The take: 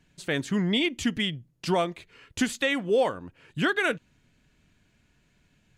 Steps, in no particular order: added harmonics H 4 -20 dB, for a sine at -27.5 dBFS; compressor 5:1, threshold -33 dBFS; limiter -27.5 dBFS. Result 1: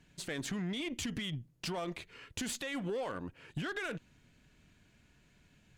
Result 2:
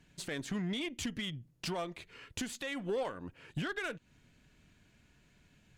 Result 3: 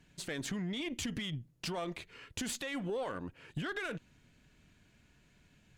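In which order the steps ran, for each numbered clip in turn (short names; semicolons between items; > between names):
limiter > added harmonics > compressor; compressor > limiter > added harmonics; limiter > compressor > added harmonics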